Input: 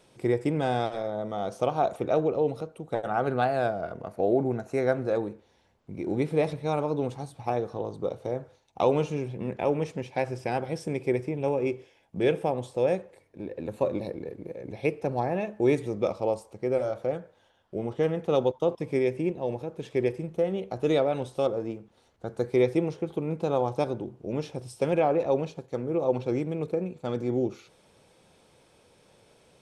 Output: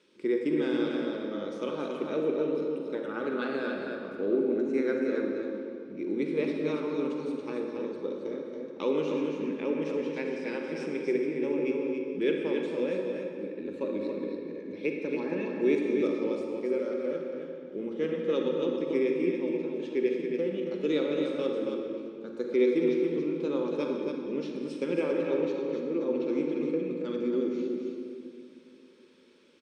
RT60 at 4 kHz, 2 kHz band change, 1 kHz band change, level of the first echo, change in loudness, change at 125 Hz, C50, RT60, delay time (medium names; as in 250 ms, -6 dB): 1.6 s, -0.5 dB, -12.0 dB, -5.5 dB, -2.0 dB, -12.5 dB, 0.0 dB, 2.6 s, 277 ms